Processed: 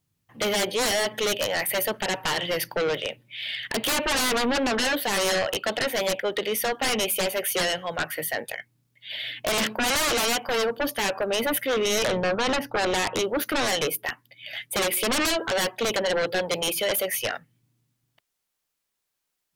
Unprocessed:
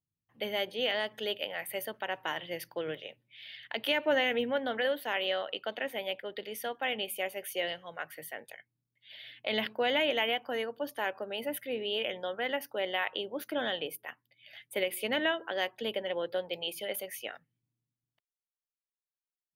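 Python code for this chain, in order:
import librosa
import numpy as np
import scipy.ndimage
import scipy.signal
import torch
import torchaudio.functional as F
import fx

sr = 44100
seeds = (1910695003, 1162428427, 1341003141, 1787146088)

y = fx.riaa(x, sr, side='playback', at=(12.04, 13.19))
y = fx.fold_sine(y, sr, drive_db=16, ceiling_db=-16.5)
y = y * librosa.db_to_amplitude(-4.0)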